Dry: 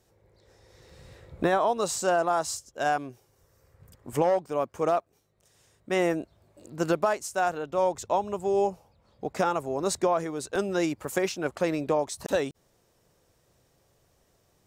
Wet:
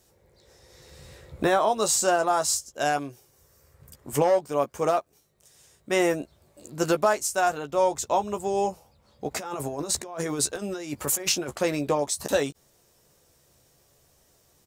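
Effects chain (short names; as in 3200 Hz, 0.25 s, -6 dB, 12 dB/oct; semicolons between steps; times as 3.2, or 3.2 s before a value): 9.31–11.54 negative-ratio compressor -34 dBFS, ratio -1; high shelf 4100 Hz +9 dB; doubler 14 ms -8 dB; gain +1 dB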